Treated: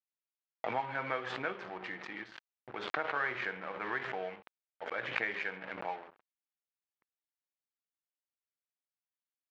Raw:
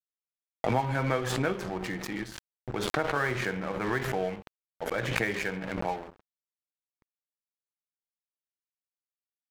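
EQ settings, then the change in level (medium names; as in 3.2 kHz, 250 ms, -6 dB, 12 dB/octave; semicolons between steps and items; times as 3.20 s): high-pass 1.3 kHz 6 dB/octave; low-pass 3 kHz 12 dB/octave; distance through air 100 m; 0.0 dB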